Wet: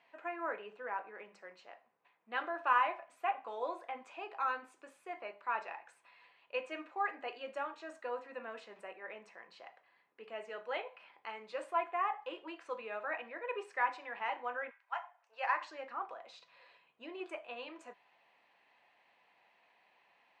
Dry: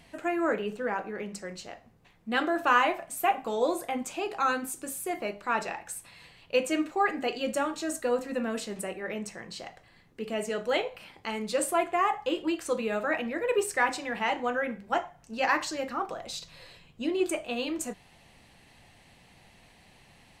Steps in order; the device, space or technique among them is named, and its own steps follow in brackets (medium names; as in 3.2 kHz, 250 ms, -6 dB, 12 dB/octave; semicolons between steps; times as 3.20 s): 14.69–15.59 s: high-pass 1.2 kHz -> 370 Hz 24 dB/octave; tin-can telephone (band-pass 640–2300 Hz; small resonant body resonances 1/2.5 kHz, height 7 dB); trim -7.5 dB